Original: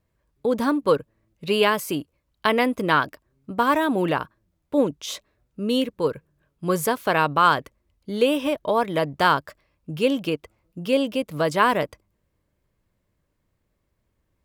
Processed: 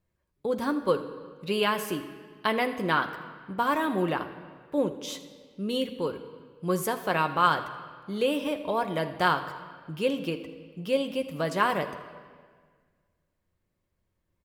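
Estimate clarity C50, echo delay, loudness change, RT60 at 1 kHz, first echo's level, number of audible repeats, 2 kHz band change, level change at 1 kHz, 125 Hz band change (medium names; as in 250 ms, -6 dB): 10.5 dB, 81 ms, -5.5 dB, 1.6 s, -18.0 dB, 1, -5.0 dB, -5.0 dB, -4.5 dB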